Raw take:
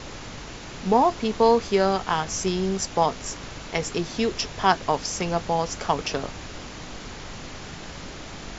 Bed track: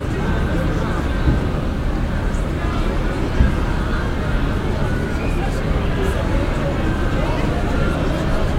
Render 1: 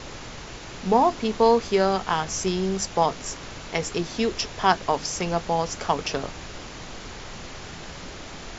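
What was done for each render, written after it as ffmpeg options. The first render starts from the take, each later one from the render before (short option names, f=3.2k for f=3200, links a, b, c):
-af "bandreject=f=50:t=h:w=4,bandreject=f=100:t=h:w=4,bandreject=f=150:t=h:w=4,bandreject=f=200:t=h:w=4,bandreject=f=250:t=h:w=4,bandreject=f=300:t=h:w=4"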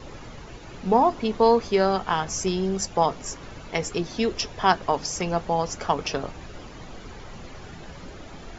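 -af "afftdn=nr=10:nf=-39"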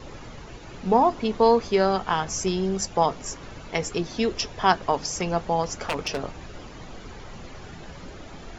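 -filter_complex "[0:a]asplit=3[a][b][c];[a]afade=t=out:st=5.63:d=0.02[d];[b]aeval=exprs='0.112*(abs(mod(val(0)/0.112+3,4)-2)-1)':c=same,afade=t=in:st=5.63:d=0.02,afade=t=out:st=6.21:d=0.02[e];[c]afade=t=in:st=6.21:d=0.02[f];[d][e][f]amix=inputs=3:normalize=0"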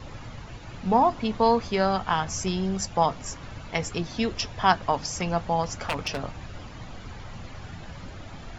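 -af "equalizer=f=100:t=o:w=0.67:g=7,equalizer=f=400:t=o:w=0.67:g=-7,equalizer=f=6.3k:t=o:w=0.67:g=-3"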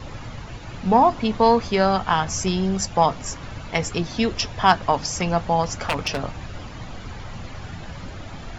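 -af "acontrast=23"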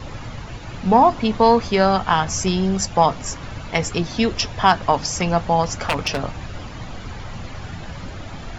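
-af "volume=2.5dB,alimiter=limit=-3dB:level=0:latency=1"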